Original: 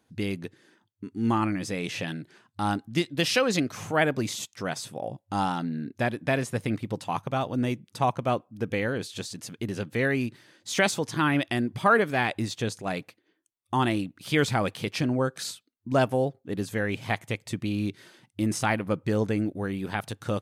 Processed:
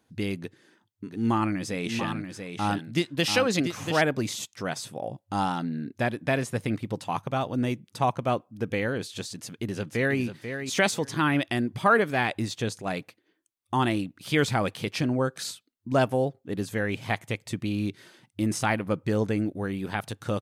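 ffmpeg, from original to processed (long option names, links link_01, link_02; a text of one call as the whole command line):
ffmpeg -i in.wav -filter_complex "[0:a]asplit=3[link_01][link_02][link_03];[link_01]afade=type=out:start_time=1.07:duration=0.02[link_04];[link_02]aecho=1:1:687:0.447,afade=type=in:start_time=1.07:duration=0.02,afade=type=out:start_time=4:duration=0.02[link_05];[link_03]afade=type=in:start_time=4:duration=0.02[link_06];[link_04][link_05][link_06]amix=inputs=3:normalize=0,asplit=2[link_07][link_08];[link_08]afade=type=in:start_time=9.35:duration=0.01,afade=type=out:start_time=10.2:duration=0.01,aecho=0:1:490|980:0.375837|0.0563756[link_09];[link_07][link_09]amix=inputs=2:normalize=0" out.wav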